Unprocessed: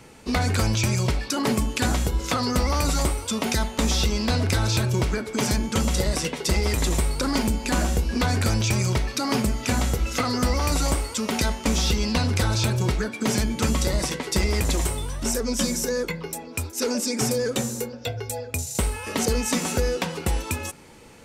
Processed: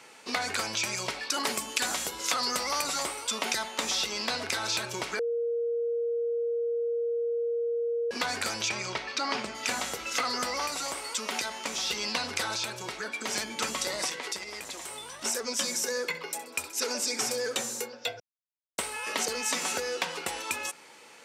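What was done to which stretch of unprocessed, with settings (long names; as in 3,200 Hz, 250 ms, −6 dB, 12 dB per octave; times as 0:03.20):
0:01.34–0:02.82: high-shelf EQ 5,600 Hz +8 dB
0:05.19–0:08.11: beep over 469 Hz −16.5 dBFS
0:08.69–0:09.55: low-pass filter 4,900 Hz
0:10.66–0:11.91: downward compressor 2.5 to 1, threshold −25 dBFS
0:12.56–0:13.36: downward compressor 2.5 to 1, threshold −25 dBFS
0:14.09–0:15.24: downward compressor 12 to 1, threshold −28 dBFS
0:15.77–0:17.55: repeating echo 65 ms, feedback 47%, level −14.5 dB
0:18.20–0:18.78: silence
whole clip: low-shelf EQ 380 Hz −7 dB; downward compressor, threshold −24 dBFS; meter weighting curve A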